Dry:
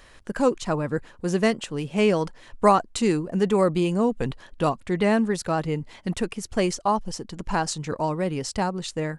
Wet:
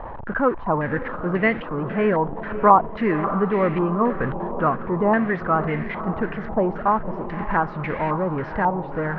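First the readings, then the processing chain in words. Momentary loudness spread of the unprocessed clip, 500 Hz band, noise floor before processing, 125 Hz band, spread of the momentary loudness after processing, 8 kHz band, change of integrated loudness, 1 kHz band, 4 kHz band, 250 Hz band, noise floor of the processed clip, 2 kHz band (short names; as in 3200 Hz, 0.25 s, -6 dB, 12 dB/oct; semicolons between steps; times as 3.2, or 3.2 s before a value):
9 LU, +1.5 dB, -51 dBFS, +1.5 dB, 7 LU, under -40 dB, +2.5 dB, +5.5 dB, under -10 dB, +1.0 dB, -33 dBFS, +6.0 dB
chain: zero-crossing step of -26.5 dBFS; air absorption 260 m; on a send: diffused feedback echo 0.553 s, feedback 59%, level -11 dB; on the sum: stepped low-pass 3.7 Hz 880–2100 Hz; gain -1.5 dB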